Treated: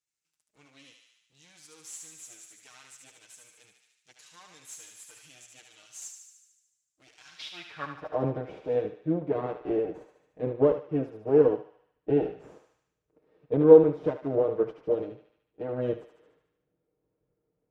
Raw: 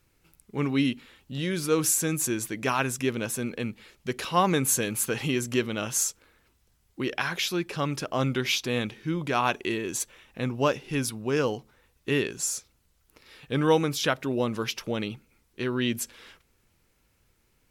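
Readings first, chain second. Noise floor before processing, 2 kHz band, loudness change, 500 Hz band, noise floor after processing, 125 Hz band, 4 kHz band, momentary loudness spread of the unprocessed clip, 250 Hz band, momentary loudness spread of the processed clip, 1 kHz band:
−68 dBFS, −17.5 dB, +1.5 dB, +4.5 dB, −81 dBFS, −6.0 dB, −17.5 dB, 10 LU, −3.0 dB, 21 LU, −9.5 dB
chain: lower of the sound and its delayed copy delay 6.5 ms
high-pass filter 41 Hz
high-shelf EQ 11,000 Hz +6.5 dB
in parallel at +3 dB: brickwall limiter −19 dBFS, peak gain reduction 9.5 dB
on the sum: RIAA equalisation playback
band-pass filter sweep 7,200 Hz → 460 Hz, 0:07.21–0:08.22
on a send: feedback echo with a high-pass in the loop 74 ms, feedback 66%, high-pass 800 Hz, level −4 dB
on the sum: expander for the loud parts 1.5 to 1, over −36 dBFS
level +2.5 dB

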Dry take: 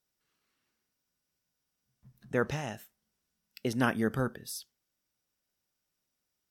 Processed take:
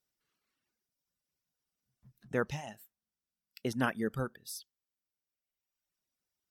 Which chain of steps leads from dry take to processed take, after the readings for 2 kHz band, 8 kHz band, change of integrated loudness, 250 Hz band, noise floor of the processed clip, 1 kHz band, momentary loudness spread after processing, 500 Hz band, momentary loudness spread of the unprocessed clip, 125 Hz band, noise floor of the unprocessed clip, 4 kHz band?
−3.0 dB, −3.0 dB, −3.5 dB, −4.0 dB, below −85 dBFS, −3.0 dB, 13 LU, −3.5 dB, 12 LU, −4.0 dB, −84 dBFS, −3.5 dB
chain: reverb reduction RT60 1.5 s
level −2.5 dB

